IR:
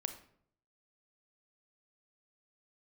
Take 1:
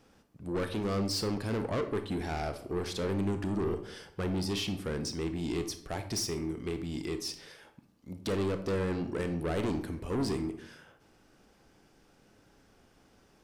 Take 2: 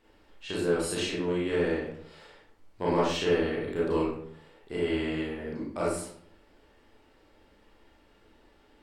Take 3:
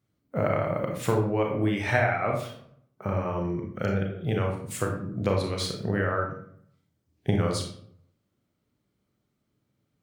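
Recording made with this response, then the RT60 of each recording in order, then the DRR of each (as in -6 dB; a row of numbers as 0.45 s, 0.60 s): 1; 0.65 s, 0.65 s, 0.65 s; 8.0 dB, -6.5 dB, 1.0 dB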